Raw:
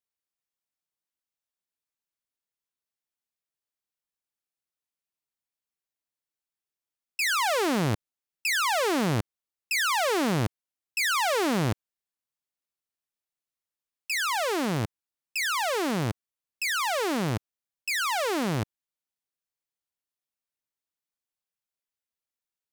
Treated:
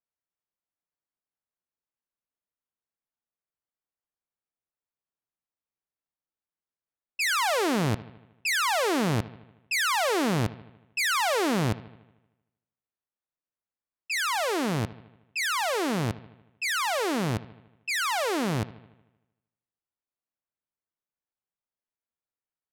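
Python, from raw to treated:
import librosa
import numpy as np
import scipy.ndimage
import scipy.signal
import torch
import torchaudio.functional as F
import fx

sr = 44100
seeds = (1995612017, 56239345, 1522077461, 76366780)

p1 = fx.env_lowpass(x, sr, base_hz=1600.0, full_db=-25.0)
y = p1 + fx.echo_bbd(p1, sr, ms=77, stages=2048, feedback_pct=58, wet_db=-18, dry=0)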